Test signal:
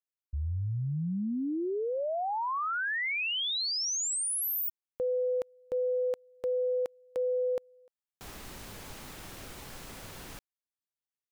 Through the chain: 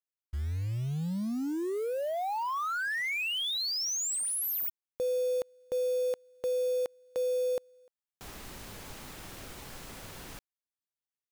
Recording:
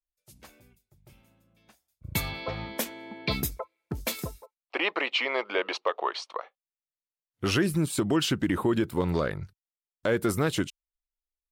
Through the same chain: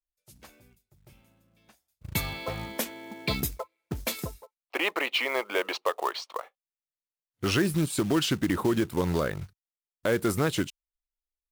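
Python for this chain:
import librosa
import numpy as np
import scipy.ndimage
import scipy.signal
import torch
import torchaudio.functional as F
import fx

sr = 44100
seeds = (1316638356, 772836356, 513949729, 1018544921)

y = fx.quant_float(x, sr, bits=2)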